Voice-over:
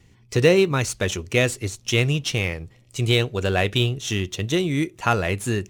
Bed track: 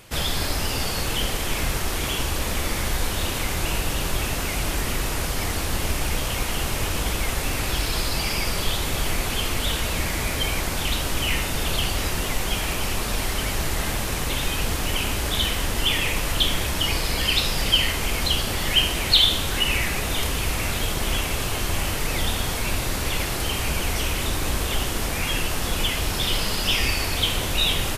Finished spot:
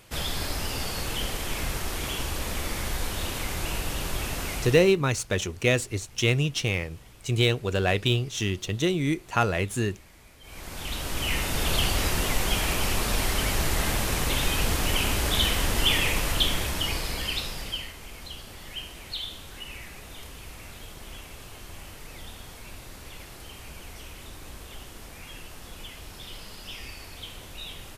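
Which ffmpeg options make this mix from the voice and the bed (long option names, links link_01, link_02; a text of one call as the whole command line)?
ffmpeg -i stem1.wav -i stem2.wav -filter_complex "[0:a]adelay=4300,volume=-3dB[link_01];[1:a]volume=21.5dB,afade=type=out:start_time=4.53:duration=0.43:silence=0.0794328,afade=type=in:start_time=10.42:duration=1.35:silence=0.0446684,afade=type=out:start_time=15.92:duration=2.01:silence=0.133352[link_02];[link_01][link_02]amix=inputs=2:normalize=0" out.wav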